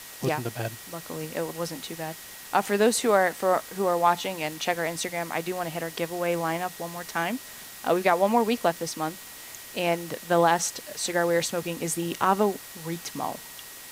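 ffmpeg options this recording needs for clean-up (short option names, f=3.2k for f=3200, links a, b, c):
-af "adeclick=t=4,bandreject=f=1.9k:w=30,afwtdn=0.0079"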